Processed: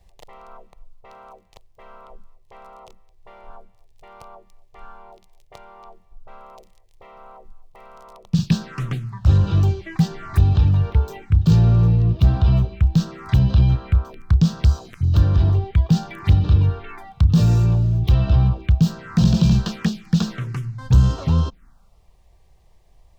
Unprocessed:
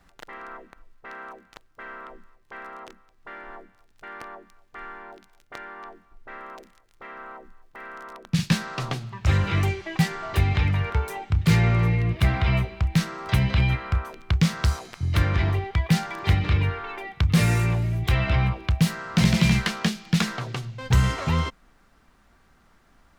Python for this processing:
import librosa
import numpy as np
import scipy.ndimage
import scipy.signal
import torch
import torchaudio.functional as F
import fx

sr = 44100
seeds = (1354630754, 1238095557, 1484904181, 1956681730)

y = 10.0 ** (-11.0 / 20.0) * np.tanh(x / 10.0 ** (-11.0 / 20.0))
y = fx.low_shelf(y, sr, hz=220.0, db=9.0)
y = fx.env_phaser(y, sr, low_hz=230.0, high_hz=2100.0, full_db=-16.0)